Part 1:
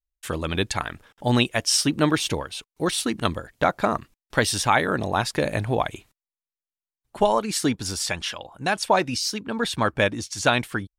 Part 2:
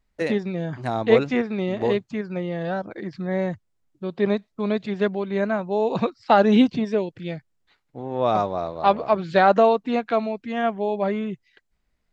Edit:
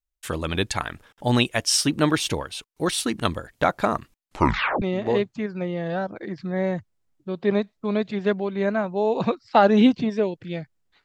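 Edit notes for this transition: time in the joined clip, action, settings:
part 1
0:04.20: tape stop 0.62 s
0:04.82: continue with part 2 from 0:01.57

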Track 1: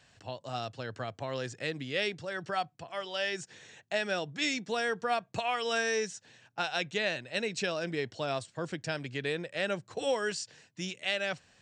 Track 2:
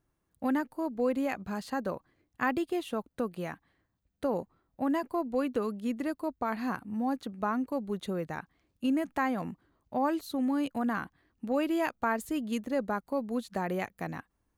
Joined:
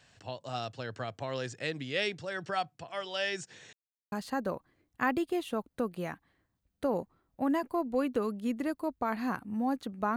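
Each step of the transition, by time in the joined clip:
track 1
0:03.73–0:04.12: silence
0:04.12: continue with track 2 from 0:01.52

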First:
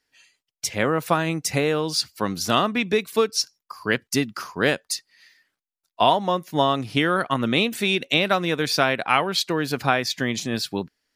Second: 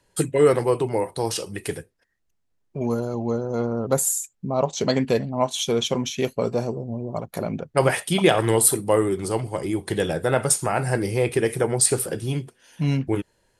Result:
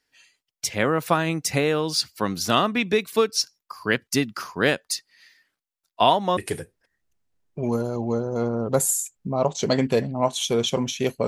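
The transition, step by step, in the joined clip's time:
first
0:06.37: continue with second from 0:01.55

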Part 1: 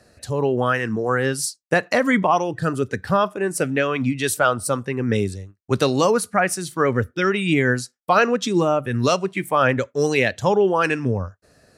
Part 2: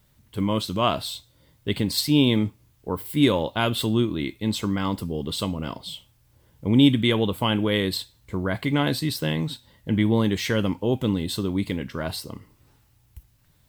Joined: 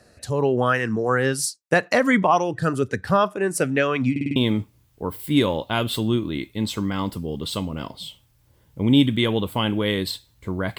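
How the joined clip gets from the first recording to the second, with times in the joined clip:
part 1
0:04.11: stutter in place 0.05 s, 5 plays
0:04.36: continue with part 2 from 0:02.22

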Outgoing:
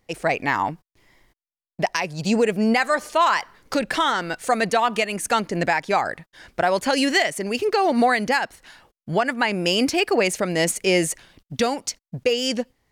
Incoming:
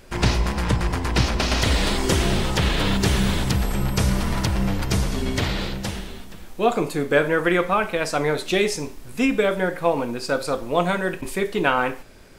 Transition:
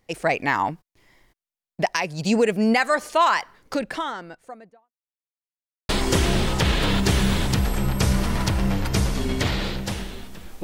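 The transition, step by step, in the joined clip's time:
outgoing
0:03.21–0:04.92: fade out and dull
0:04.92–0:05.89: silence
0:05.89: continue with incoming from 0:01.86

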